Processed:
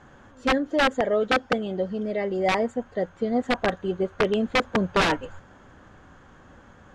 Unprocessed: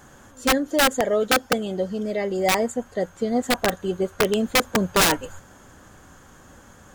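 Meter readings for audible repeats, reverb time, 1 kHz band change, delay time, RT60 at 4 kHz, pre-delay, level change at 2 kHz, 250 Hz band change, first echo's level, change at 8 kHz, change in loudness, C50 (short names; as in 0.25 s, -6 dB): none, none, -1.5 dB, none, none, none, -2.0 dB, -1.5 dB, none, -16.5 dB, -2.5 dB, none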